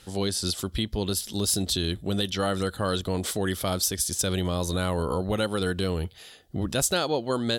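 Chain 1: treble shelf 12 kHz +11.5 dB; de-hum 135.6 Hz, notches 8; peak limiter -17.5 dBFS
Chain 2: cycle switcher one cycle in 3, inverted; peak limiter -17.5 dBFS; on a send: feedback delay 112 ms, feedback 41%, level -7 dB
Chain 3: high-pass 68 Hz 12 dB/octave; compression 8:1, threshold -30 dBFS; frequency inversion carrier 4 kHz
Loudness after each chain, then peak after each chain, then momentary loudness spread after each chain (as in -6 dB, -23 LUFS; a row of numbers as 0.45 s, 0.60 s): -28.5 LUFS, -27.5 LUFS, -32.5 LUFS; -17.5 dBFS, -14.5 dBFS, -17.0 dBFS; 4 LU, 3 LU, 4 LU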